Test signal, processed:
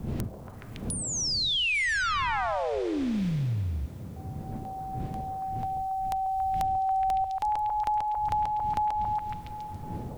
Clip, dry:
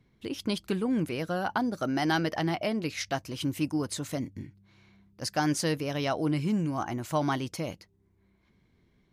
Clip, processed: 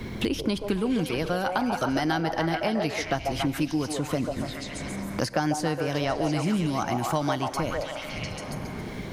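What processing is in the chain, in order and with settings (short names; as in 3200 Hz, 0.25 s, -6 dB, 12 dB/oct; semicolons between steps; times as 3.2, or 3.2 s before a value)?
wind noise 86 Hz -47 dBFS; on a send: delay with a stepping band-pass 0.14 s, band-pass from 630 Hz, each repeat 0.7 oct, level -1 dB; on the sum: Schroeder reverb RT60 2.2 s, combs from 33 ms, DRR 17 dB; three-band squash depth 100%; gain +1.5 dB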